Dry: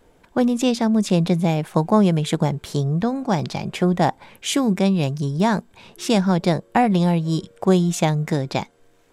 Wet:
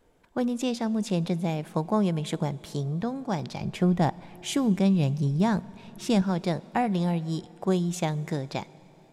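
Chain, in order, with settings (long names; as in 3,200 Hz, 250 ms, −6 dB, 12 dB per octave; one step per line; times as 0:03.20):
0:03.61–0:06.22: low-shelf EQ 180 Hz +11 dB
dense smooth reverb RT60 3.9 s, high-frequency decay 0.75×, DRR 19.5 dB
level −8.5 dB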